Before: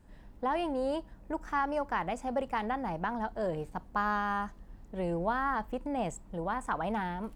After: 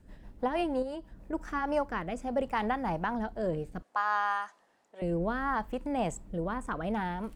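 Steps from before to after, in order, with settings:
rotating-speaker cabinet horn 6.3 Hz, later 0.65 Hz, at 0:01.08
0:00.82–0:01.33: downward compressor 3 to 1, threshold −41 dBFS, peak gain reduction 8 dB
0:03.82–0:05.02: Chebyshev band-pass filter 790–9,000 Hz, order 2
level +4 dB

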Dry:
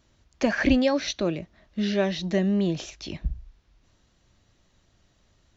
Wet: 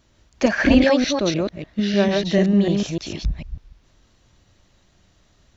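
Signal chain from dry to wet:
delay that plays each chunk backwards 149 ms, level −2 dB
level +4 dB

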